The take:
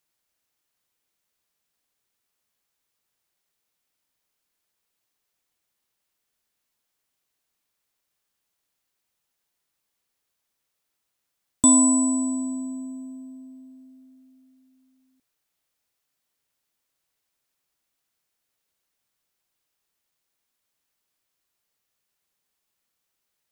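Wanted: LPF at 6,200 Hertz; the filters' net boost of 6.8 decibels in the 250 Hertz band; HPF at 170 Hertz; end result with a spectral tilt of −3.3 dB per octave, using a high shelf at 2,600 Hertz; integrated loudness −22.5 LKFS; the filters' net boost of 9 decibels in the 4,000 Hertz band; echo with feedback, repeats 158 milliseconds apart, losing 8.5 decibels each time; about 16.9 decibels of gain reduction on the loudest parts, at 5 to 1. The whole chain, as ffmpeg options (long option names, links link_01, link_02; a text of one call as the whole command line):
ffmpeg -i in.wav -af "highpass=170,lowpass=6200,equalizer=frequency=250:width_type=o:gain=7.5,highshelf=frequency=2600:gain=9,equalizer=frequency=4000:width_type=o:gain=4,acompressor=threshold=-27dB:ratio=5,aecho=1:1:158|316|474|632:0.376|0.143|0.0543|0.0206,volume=6dB" out.wav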